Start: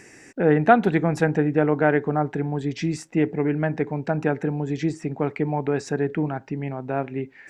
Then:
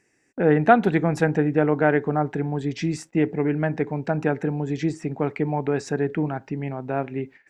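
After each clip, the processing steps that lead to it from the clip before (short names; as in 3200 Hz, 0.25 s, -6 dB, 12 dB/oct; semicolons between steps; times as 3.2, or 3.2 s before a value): gate -42 dBFS, range -19 dB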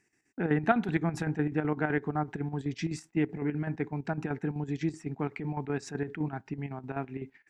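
bell 540 Hz -14 dB 0.39 oct; chopper 7.9 Hz, depth 60%, duty 65%; gain -5.5 dB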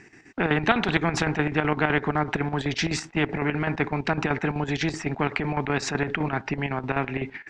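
air absorption 140 m; spectral compressor 2:1; gain +7 dB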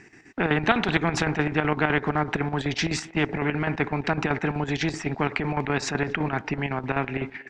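speakerphone echo 0.24 s, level -19 dB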